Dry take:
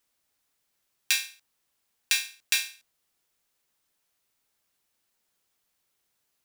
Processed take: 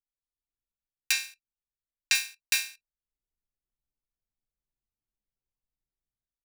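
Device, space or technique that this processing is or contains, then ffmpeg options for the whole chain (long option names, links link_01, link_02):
voice memo with heavy noise removal: -filter_complex "[0:a]bandreject=frequency=3400:width=6.6,asettb=1/sr,asplit=3[link_01][link_02][link_03];[link_01]atrim=end=1.124[link_04];[link_02]atrim=start=1.12:end=2.15,asetpts=PTS-STARTPTS,afade=type=in:duration=0.004:curve=qsin,afade=type=out:start_time=1.026:duration=0.004:curve=qsin,acrossover=split=8700[link_05][link_06];[link_06]acompressor=threshold=-39dB:ratio=4:attack=1:release=60[link_07];[link_05][link_07]amix=inputs=2:normalize=0[link_08];[link_03]atrim=start=2.146[link_09];[link_04][link_08]acrossfade=duration=0.004:curve1=hsin:curve2=qsin[link_10];[link_10][link_09]acrossfade=duration=0.004:curve1=qsin:curve2=hsin,anlmdn=0.001,dynaudnorm=framelen=200:gausssize=5:maxgain=14.5dB,volume=-3dB"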